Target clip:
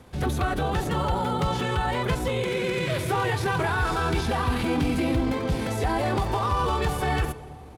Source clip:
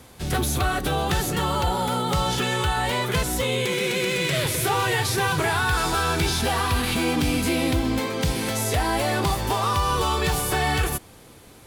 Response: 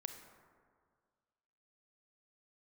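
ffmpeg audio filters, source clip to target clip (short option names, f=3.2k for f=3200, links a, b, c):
-filter_complex "[0:a]highshelf=f=3.2k:g=-12,atempo=1.5,asplit=2[a][b];[1:a]atrim=start_sample=2205,asetrate=22932,aresample=44100[c];[b][c]afir=irnorm=-1:irlink=0,volume=-7.5dB[d];[a][d]amix=inputs=2:normalize=0,volume=-3.5dB"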